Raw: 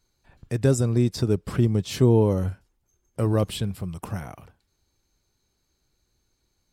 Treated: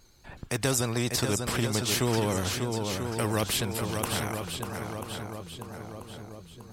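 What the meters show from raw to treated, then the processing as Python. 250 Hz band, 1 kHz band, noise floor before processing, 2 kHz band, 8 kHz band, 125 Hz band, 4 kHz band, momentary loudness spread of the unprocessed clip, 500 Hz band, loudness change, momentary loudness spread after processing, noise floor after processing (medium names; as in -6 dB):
-6.0 dB, +4.0 dB, -74 dBFS, +8.0 dB, +8.5 dB, -7.5 dB, +7.0 dB, 15 LU, -5.0 dB, -5.0 dB, 16 LU, -50 dBFS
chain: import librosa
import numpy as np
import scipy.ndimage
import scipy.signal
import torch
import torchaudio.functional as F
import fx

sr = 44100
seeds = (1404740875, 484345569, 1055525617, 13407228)

p1 = fx.vibrato(x, sr, rate_hz=9.7, depth_cents=56.0)
p2 = p1 + fx.echo_swing(p1, sr, ms=988, ratio=1.5, feedback_pct=33, wet_db=-9, dry=0)
p3 = fx.spectral_comp(p2, sr, ratio=2.0)
y = p3 * librosa.db_to_amplitude(-3.5)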